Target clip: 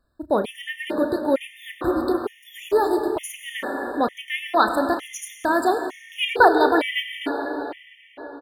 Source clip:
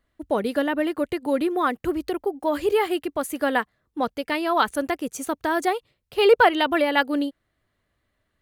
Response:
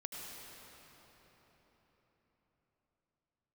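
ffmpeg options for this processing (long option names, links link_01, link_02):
-filter_complex "[0:a]asplit=2[link_01][link_02];[link_02]adelay=33,volume=-11dB[link_03];[link_01][link_03]amix=inputs=2:normalize=0,asplit=2[link_04][link_05];[1:a]atrim=start_sample=2205[link_06];[link_05][link_06]afir=irnorm=-1:irlink=0,volume=0.5dB[link_07];[link_04][link_07]amix=inputs=2:normalize=0,afftfilt=real='re*gt(sin(2*PI*1.1*pts/sr)*(1-2*mod(floor(b*sr/1024/1800),2)),0)':imag='im*gt(sin(2*PI*1.1*pts/sr)*(1-2*mod(floor(b*sr/1024/1800),2)),0)':win_size=1024:overlap=0.75,volume=-1.5dB"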